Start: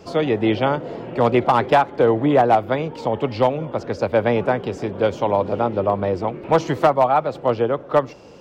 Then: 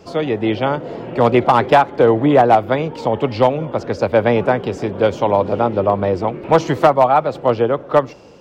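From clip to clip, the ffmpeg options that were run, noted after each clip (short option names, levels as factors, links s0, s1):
-af "dynaudnorm=f=570:g=3:m=1.78"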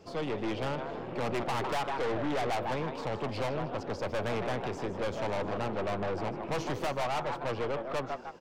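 -filter_complex "[0:a]asplit=2[s0][s1];[s1]asplit=4[s2][s3][s4][s5];[s2]adelay=154,afreqshift=110,volume=0.266[s6];[s3]adelay=308,afreqshift=220,volume=0.104[s7];[s4]adelay=462,afreqshift=330,volume=0.0403[s8];[s5]adelay=616,afreqshift=440,volume=0.0158[s9];[s6][s7][s8][s9]amix=inputs=4:normalize=0[s10];[s0][s10]amix=inputs=2:normalize=0,aeval=exprs='(tanh(11.2*val(0)+0.55)-tanh(0.55))/11.2':c=same,volume=0.376"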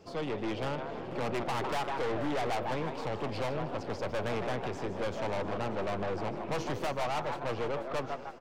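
-af "aecho=1:1:484|968|1452|1936|2420:0.158|0.0903|0.0515|0.0294|0.0167,volume=0.891"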